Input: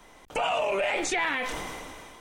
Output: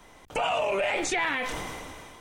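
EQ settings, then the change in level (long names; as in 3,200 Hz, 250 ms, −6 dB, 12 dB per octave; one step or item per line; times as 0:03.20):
parametric band 97 Hz +6 dB 1.2 octaves
0.0 dB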